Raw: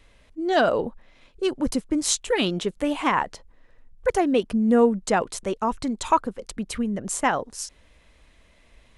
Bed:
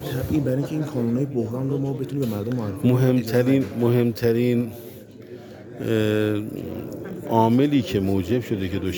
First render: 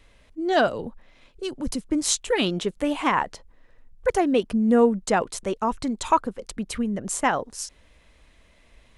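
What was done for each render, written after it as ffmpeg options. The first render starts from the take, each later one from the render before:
-filter_complex "[0:a]asettb=1/sr,asplit=3[a][b][c];[a]atrim=end=0.674[d];[b]atrim=start=0.67:end=1.88,asetpts=PTS-STARTPTS,afade=t=in:d=0.004:c=qsin,afade=t=out:st=1.206:d=0.004:c=qsin,acrossover=split=230|3000[e][f][g];[f]acompressor=threshold=-37dB:ratio=2:attack=3.2:release=140:knee=2.83:detection=peak[h];[e][h][g]amix=inputs=3:normalize=0[i];[c]atrim=start=1.876[j];[d][i]acrossfade=d=0.004:c1=hsin:c2=qsin[k];[k][j]acrossfade=d=0.004:c1=qsin:c2=hsin,asettb=1/sr,asplit=3[l][m][n];[l]atrim=end=4.774[o];[m]atrim=start=4.77:end=5.4,asetpts=PTS-STARTPTS,afade=t=in:d=0.004:c=qsin,afade=t=out:st=0.626:d=0.004:c=qsin,agate=range=-33dB:threshold=-43dB:ratio=3:release=100:detection=peak[p];[n]atrim=start=5.396[q];[o][p]acrossfade=d=0.004:c1=hsin:c2=qsin[r];[r][q]acrossfade=d=0.004:c1=qsin:c2=hsin"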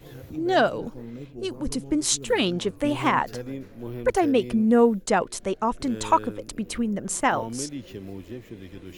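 -filter_complex "[1:a]volume=-16dB[a];[0:a][a]amix=inputs=2:normalize=0"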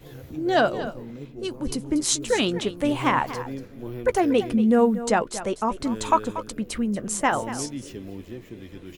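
-filter_complex "[0:a]asplit=2[a][b];[b]adelay=14,volume=-14dB[c];[a][c]amix=inputs=2:normalize=0,aecho=1:1:236:0.211"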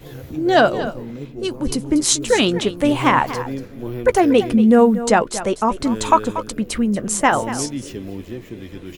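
-af "volume=6.5dB,alimiter=limit=-2dB:level=0:latency=1"

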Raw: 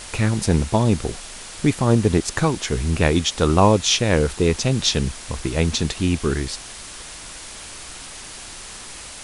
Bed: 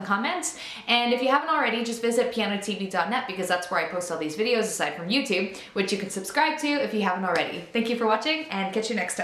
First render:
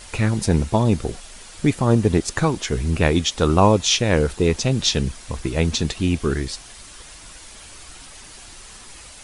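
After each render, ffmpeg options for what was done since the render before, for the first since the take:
-af "afftdn=nr=7:nf=-37"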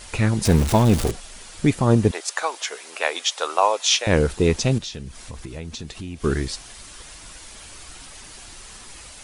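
-filter_complex "[0:a]asettb=1/sr,asplit=3[a][b][c];[a]atrim=end=0.454[d];[b]atrim=start=0.45:end=1.11,asetpts=PTS-STARTPTS,afade=t=in:d=0.004:c=qsin,afade=t=out:st=0.656:d=0.004:c=qsin,aeval=exprs='val(0)+0.5*0.0794*sgn(val(0))':c=same[e];[c]atrim=start=1.106[f];[d][e]acrossfade=d=0.004:c1=hsin:c2=qsin[g];[g][f]acrossfade=d=0.004:c1=qsin:c2=hsin,asettb=1/sr,asplit=3[h][i][j];[h]atrim=end=2.114[k];[i]atrim=start=2.11:end=4.07,asetpts=PTS-STARTPTS,afade=t=in:d=0.004:c=qsin,afade=t=out:st=1.956:d=0.004:c=qsin,highpass=f=580:w=0.5412,highpass=f=580:w=1.3066[l];[j]atrim=start=4.066[m];[k][l]acrossfade=d=0.004:c1=hsin:c2=qsin[n];[n][m]acrossfade=d=0.004:c1=qsin:c2=hsin,asettb=1/sr,asplit=3[o][p][q];[o]atrim=end=4.784[r];[p]atrim=start=4.78:end=6.24,asetpts=PTS-STARTPTS,afade=t=in:d=0.004:c=qsin,afade=t=out:st=1.456:d=0.004:c=qsin,acompressor=threshold=-34dB:ratio=3:attack=3.2:release=140:knee=1:detection=peak[s];[q]atrim=start=6.236[t];[r][s]acrossfade=d=0.004:c1=hsin:c2=qsin[u];[u][t]acrossfade=d=0.004:c1=qsin:c2=hsin"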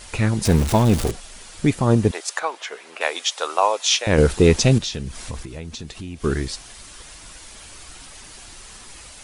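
-filter_complex "[0:a]asettb=1/sr,asplit=3[a][b][c];[a]atrim=end=2.394[d];[b]atrim=start=2.39:end=3.01,asetpts=PTS-STARTPTS,afade=t=in:d=0.004:c=qsin,afade=t=out:st=0.616:d=0.004:c=qsin,bass=f=250:g=4,treble=f=4k:g=-11[e];[c]atrim=start=3.006[f];[d][e]acrossfade=d=0.004:c1=hsin:c2=qsin[g];[g][f]acrossfade=d=0.004:c1=qsin:c2=hsin,asettb=1/sr,asplit=3[h][i][j];[h]atrim=end=4.184[k];[i]atrim=start=4.18:end=5.43,asetpts=PTS-STARTPTS,afade=t=in:d=0.004:c=qsin,afade=t=out:st=1.246:d=0.004:c=qsin,acontrast=34[l];[j]atrim=start=5.426[m];[k][l]acrossfade=d=0.004:c1=hsin:c2=qsin[n];[n][m]acrossfade=d=0.004:c1=qsin:c2=hsin"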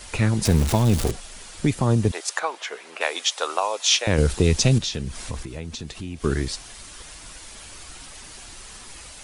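-filter_complex "[0:a]acrossover=split=150|3000[a][b][c];[b]acompressor=threshold=-19dB:ratio=6[d];[a][d][c]amix=inputs=3:normalize=0"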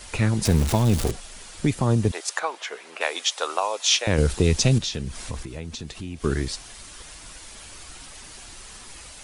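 -af "volume=-1dB"

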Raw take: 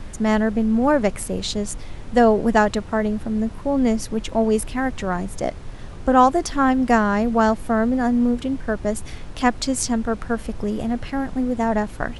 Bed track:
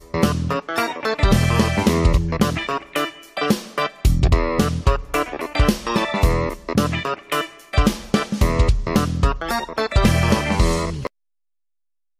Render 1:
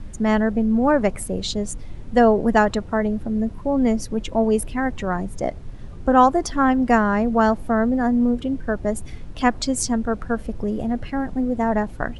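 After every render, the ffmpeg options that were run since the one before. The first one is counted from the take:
-af "afftdn=nr=9:nf=-36"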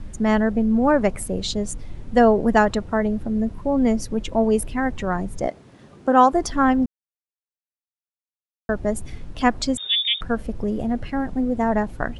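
-filter_complex "[0:a]asettb=1/sr,asplit=3[a][b][c];[a]atrim=end=5.474[d];[b]atrim=start=5.47:end=6.33,asetpts=PTS-STARTPTS,afade=t=in:d=0.004:c=qsin,afade=t=out:st=0.856:d=0.004:c=qsin,highpass=210[e];[c]atrim=start=6.326[f];[d][e]acrossfade=d=0.004:c1=hsin:c2=qsin[g];[g][f]acrossfade=d=0.004:c1=qsin:c2=hsin,asettb=1/sr,asplit=3[h][i][j];[h]atrim=end=9.774[k];[i]atrim=start=9.77:end=10.21,asetpts=PTS-STARTPTS,afade=t=in:d=0.004:c=qsin,afade=t=out:st=0.436:d=0.004:c=qsin,lowpass=f=3.1k:t=q:w=0.5098,lowpass=f=3.1k:t=q:w=0.6013,lowpass=f=3.1k:t=q:w=0.9,lowpass=f=3.1k:t=q:w=2.563,afreqshift=-3700[l];[j]atrim=start=10.206[m];[k][l]acrossfade=d=0.004:c1=hsin:c2=qsin[n];[n][m]acrossfade=d=0.004:c1=qsin:c2=hsin,asplit=3[o][p][q];[o]atrim=end=6.86,asetpts=PTS-STARTPTS,afade=t=out:st=6.856:d=0.004:c=hsin[r];[p]atrim=start=6.86:end=8.69,asetpts=PTS-STARTPTS,volume=0[s];[q]atrim=start=8.69,asetpts=PTS-STARTPTS,afade=t=in:d=0.004:c=hsin[t];[r][s][t]concat=n=3:v=0:a=1"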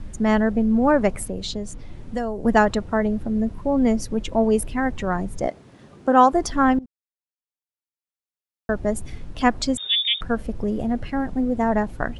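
-filter_complex "[0:a]asettb=1/sr,asplit=3[a][b][c];[a]atrim=end=1.254[d];[b]atrim=start=1.25:end=2.45,asetpts=PTS-STARTPTS,afade=t=in:d=0.004:c=qsin,afade=t=out:st=1.196:d=0.004:c=qsin,acrossover=split=110|6200[e][f][g];[e]acompressor=threshold=-33dB:ratio=4[h];[f]acompressor=threshold=-27dB:ratio=4[i];[g]acompressor=threshold=-46dB:ratio=4[j];[h][i][j]amix=inputs=3:normalize=0[k];[c]atrim=start=2.446[l];[d][k]acrossfade=d=0.004:c1=hsin:c2=qsin[m];[m][l]acrossfade=d=0.004:c1=qsin:c2=hsin,asplit=2[n][o];[n]atrim=end=6.79,asetpts=PTS-STARTPTS,afade=t=out:st=6.786:d=0.004:c=hsin:silence=0.0891251[p];[o]atrim=start=6.79,asetpts=PTS-STARTPTS,afade=t=in:d=1.94:silence=0.0891251[q];[p][q]concat=n=2:v=0:a=1"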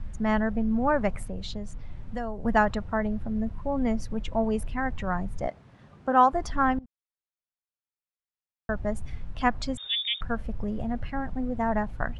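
-af "lowpass=f=1.6k:p=1,equalizer=f=350:t=o:w=1.6:g=-11.5"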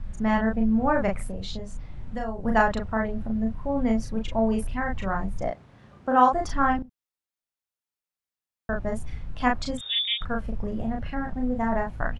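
-filter_complex "[0:a]asplit=2[a][b];[b]adelay=36,volume=-3dB[c];[a][c]amix=inputs=2:normalize=0"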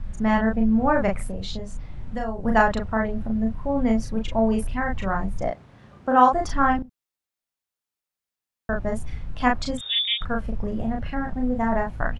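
-af "volume=2.5dB"

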